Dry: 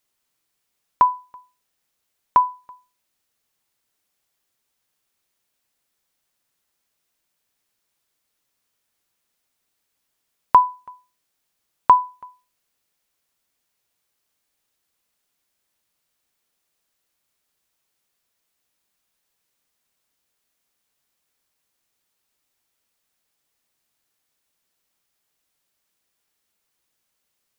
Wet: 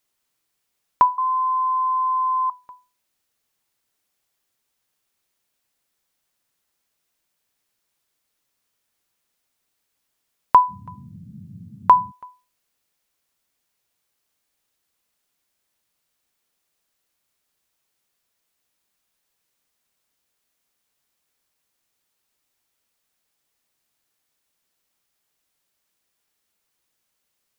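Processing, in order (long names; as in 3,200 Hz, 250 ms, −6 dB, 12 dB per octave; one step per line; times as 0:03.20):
0:01.18–0:02.50: beep over 1,030 Hz −18 dBFS
0:10.68–0:12.10: noise in a band 88–210 Hz −41 dBFS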